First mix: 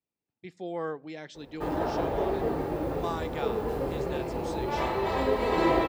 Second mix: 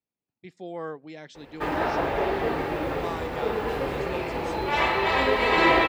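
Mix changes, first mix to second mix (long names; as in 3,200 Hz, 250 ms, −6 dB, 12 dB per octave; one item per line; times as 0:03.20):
speech: send −10.5 dB
background: add parametric band 2,400 Hz +14 dB 2.3 octaves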